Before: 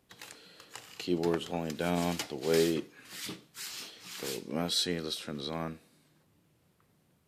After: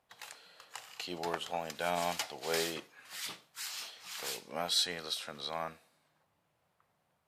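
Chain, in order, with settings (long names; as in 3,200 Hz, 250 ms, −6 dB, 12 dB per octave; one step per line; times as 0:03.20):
low shelf with overshoot 490 Hz −11.5 dB, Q 1.5
one half of a high-frequency compander decoder only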